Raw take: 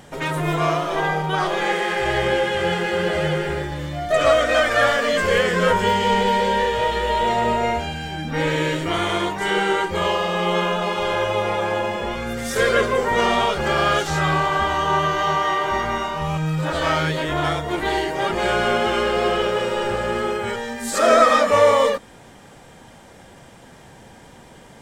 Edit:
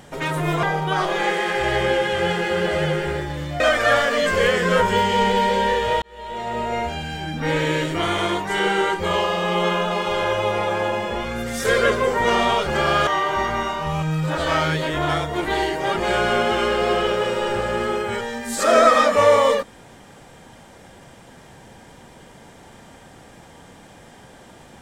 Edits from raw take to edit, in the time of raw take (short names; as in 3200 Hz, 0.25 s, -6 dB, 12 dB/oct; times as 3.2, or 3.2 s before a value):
0.63–1.05 cut
4.02–4.51 cut
6.93–8.01 fade in
13.98–15.42 cut